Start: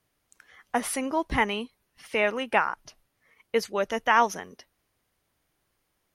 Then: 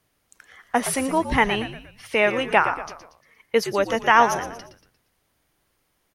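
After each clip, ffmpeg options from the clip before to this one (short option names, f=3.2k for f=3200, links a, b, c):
-filter_complex "[0:a]asplit=5[a][b][c][d][e];[b]adelay=117,afreqshift=-81,volume=-11dB[f];[c]adelay=234,afreqshift=-162,volume=-18.3dB[g];[d]adelay=351,afreqshift=-243,volume=-25.7dB[h];[e]adelay=468,afreqshift=-324,volume=-33dB[i];[a][f][g][h][i]amix=inputs=5:normalize=0,volume=5dB"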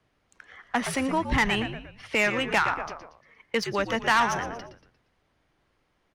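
-filter_complex "[0:a]acrossover=split=250|1000[a][b][c];[b]acompressor=threshold=-31dB:ratio=6[d];[a][d][c]amix=inputs=3:normalize=0,asoftclip=type=tanh:threshold=-16dB,adynamicsmooth=sensitivity=2.5:basefreq=4.2k,volume=1.5dB"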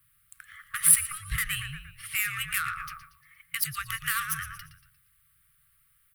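-af "acompressor=threshold=-26dB:ratio=4,afftfilt=real='re*(1-between(b*sr/4096,170,1100))':imag='im*(1-between(b*sr/4096,170,1100))':win_size=4096:overlap=0.75,aexciter=amount=11.9:drive=9.3:freq=9.1k"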